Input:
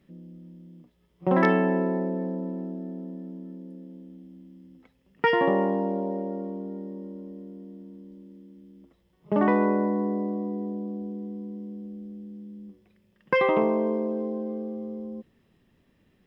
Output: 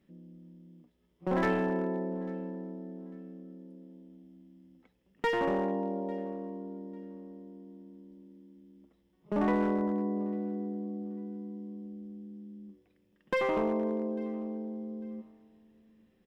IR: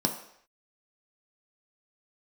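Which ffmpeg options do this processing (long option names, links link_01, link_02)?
-filter_complex "[0:a]aeval=exprs='clip(val(0),-1,0.112)':channel_layout=same,aecho=1:1:847|1694:0.0668|0.0154,asplit=2[link_01][link_02];[1:a]atrim=start_sample=2205[link_03];[link_02][link_03]afir=irnorm=-1:irlink=0,volume=-27dB[link_04];[link_01][link_04]amix=inputs=2:normalize=0,volume=-7dB"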